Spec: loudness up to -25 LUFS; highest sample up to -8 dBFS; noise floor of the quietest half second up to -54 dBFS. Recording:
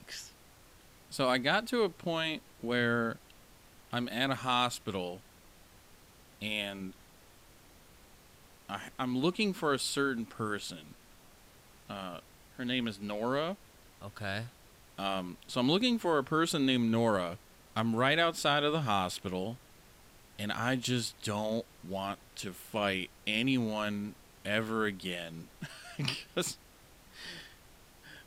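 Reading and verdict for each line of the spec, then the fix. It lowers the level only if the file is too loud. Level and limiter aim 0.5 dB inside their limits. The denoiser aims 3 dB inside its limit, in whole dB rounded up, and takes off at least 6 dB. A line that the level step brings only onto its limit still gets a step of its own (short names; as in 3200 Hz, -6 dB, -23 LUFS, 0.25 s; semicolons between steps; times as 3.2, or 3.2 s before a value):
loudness -33.0 LUFS: OK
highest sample -14.0 dBFS: OK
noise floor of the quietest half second -58 dBFS: OK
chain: none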